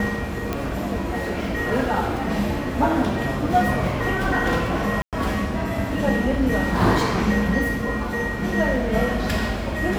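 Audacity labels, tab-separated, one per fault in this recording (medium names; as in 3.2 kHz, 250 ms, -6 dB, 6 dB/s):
0.530000	0.530000	pop -11 dBFS
5.020000	5.130000	dropout 107 ms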